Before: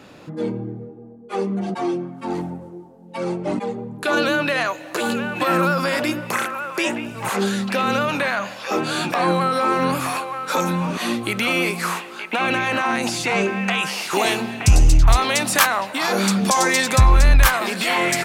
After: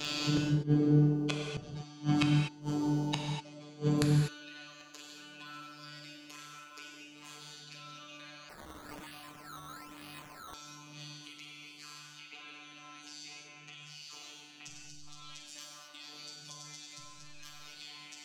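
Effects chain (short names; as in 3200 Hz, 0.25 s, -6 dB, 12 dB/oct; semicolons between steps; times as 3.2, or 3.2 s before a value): band shelf 4400 Hz +14 dB; compressor 12:1, threshold -23 dBFS, peak gain reduction 20 dB; robotiser 148 Hz; notches 60/120/180/240/300/360 Hz; flutter echo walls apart 8 m, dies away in 0.43 s; flipped gate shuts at -21 dBFS, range -33 dB; AGC gain up to 5 dB; gate with hold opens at -47 dBFS; non-linear reverb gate 0.27 s flat, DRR 0 dB; 8.49–10.54 decimation with a swept rate 12×, swing 100% 1.1 Hz; gain +5 dB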